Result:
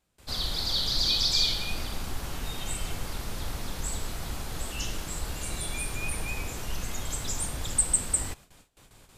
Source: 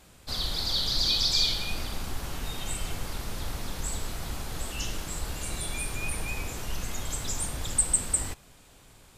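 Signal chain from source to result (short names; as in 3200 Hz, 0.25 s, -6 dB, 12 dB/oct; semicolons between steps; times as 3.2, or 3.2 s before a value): gate with hold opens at -44 dBFS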